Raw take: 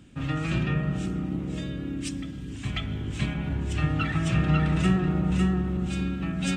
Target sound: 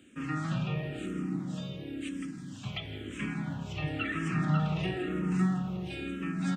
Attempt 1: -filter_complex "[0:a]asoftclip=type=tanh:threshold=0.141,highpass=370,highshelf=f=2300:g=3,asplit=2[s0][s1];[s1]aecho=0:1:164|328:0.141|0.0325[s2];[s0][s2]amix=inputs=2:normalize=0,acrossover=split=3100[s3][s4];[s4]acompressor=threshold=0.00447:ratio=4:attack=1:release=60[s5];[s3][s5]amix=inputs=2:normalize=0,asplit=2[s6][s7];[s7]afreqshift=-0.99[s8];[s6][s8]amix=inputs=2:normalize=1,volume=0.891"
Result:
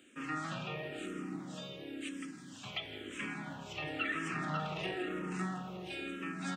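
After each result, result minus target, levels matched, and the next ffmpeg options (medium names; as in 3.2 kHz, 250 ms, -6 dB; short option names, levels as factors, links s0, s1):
125 Hz band -6.5 dB; saturation: distortion +10 dB
-filter_complex "[0:a]asoftclip=type=tanh:threshold=0.141,highpass=150,highshelf=f=2300:g=3,asplit=2[s0][s1];[s1]aecho=0:1:164|328:0.141|0.0325[s2];[s0][s2]amix=inputs=2:normalize=0,acrossover=split=3100[s3][s4];[s4]acompressor=threshold=0.00447:ratio=4:attack=1:release=60[s5];[s3][s5]amix=inputs=2:normalize=0,asplit=2[s6][s7];[s7]afreqshift=-0.99[s8];[s6][s8]amix=inputs=2:normalize=1,volume=0.891"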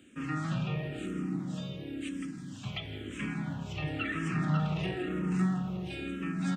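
saturation: distortion +10 dB
-filter_complex "[0:a]asoftclip=type=tanh:threshold=0.282,highpass=150,highshelf=f=2300:g=3,asplit=2[s0][s1];[s1]aecho=0:1:164|328:0.141|0.0325[s2];[s0][s2]amix=inputs=2:normalize=0,acrossover=split=3100[s3][s4];[s4]acompressor=threshold=0.00447:ratio=4:attack=1:release=60[s5];[s3][s5]amix=inputs=2:normalize=0,asplit=2[s6][s7];[s7]afreqshift=-0.99[s8];[s6][s8]amix=inputs=2:normalize=1,volume=0.891"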